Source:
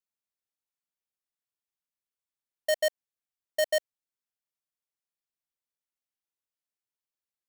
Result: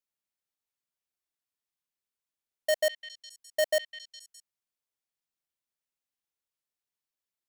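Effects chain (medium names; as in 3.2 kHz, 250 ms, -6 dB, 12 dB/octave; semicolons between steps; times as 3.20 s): repeats whose band climbs or falls 206 ms, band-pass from 2.8 kHz, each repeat 0.7 oct, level -7 dB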